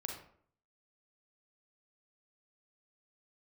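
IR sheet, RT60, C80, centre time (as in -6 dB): 0.60 s, 8.5 dB, 33 ms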